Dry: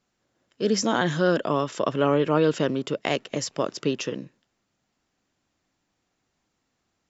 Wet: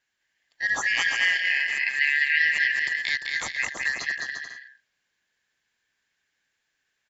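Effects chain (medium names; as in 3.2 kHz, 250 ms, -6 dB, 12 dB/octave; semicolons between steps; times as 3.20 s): four frequency bands reordered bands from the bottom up 4123; bouncing-ball echo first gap 210 ms, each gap 0.65×, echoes 5; trim -3 dB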